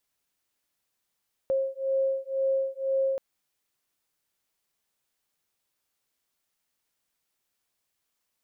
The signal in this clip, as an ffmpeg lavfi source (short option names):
-f lavfi -i "aevalsrc='0.0422*(sin(2*PI*536*t)+sin(2*PI*538*t))':d=1.68:s=44100"